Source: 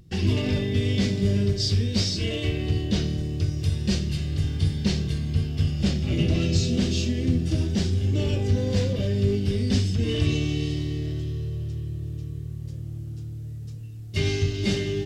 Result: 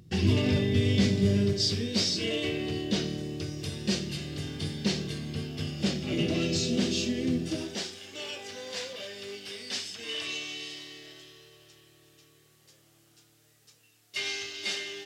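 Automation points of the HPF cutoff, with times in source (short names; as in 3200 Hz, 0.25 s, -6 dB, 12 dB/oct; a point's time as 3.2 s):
1.14 s 88 Hz
1.9 s 230 Hz
7.43 s 230 Hz
8.01 s 920 Hz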